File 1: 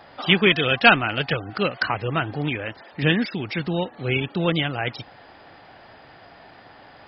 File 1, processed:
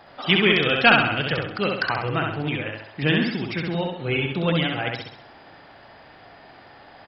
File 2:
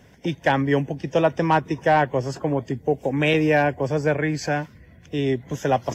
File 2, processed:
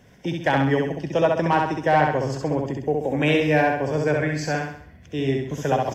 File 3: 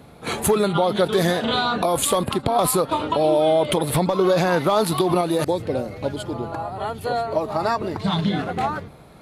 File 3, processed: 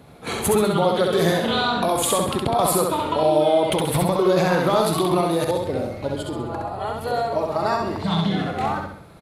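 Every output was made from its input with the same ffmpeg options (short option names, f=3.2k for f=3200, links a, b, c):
-af "aecho=1:1:66|132|198|264|330|396:0.708|0.319|0.143|0.0645|0.029|0.0131,volume=-2dB"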